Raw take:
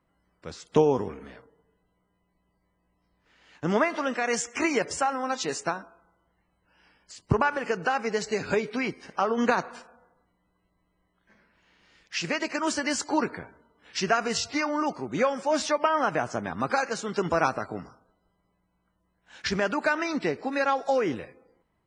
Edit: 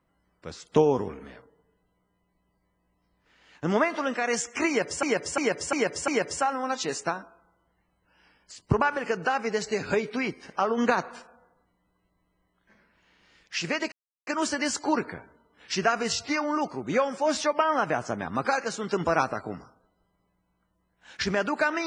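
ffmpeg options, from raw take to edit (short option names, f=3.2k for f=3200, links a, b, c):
-filter_complex "[0:a]asplit=6[a][b][c][d][e][f];[a]atrim=end=5.032[g];[b]atrim=start=4.678:end=5.032[h];[c]atrim=start=4.678:end=5.032[i];[d]atrim=start=4.678:end=5.032[j];[e]atrim=start=4.678:end=12.52,asetpts=PTS-STARTPTS,afade=t=out:st=7.838:d=0.004:c=hsin,apad=pad_dur=0.35[k];[f]atrim=start=12.52,asetpts=PTS-STARTPTS,afade=t=in:d=0.004:c=hsin[l];[g][h]acrossfade=d=0.004:c1=hsin:c2=hsin[m];[m][i]acrossfade=d=0.004:c1=hsin:c2=hsin[n];[n][j]acrossfade=d=0.004:c1=hsin:c2=hsin[o];[k][l]concat=n=2:v=0:a=1[p];[o][p]acrossfade=d=0.004:c1=hsin:c2=hsin"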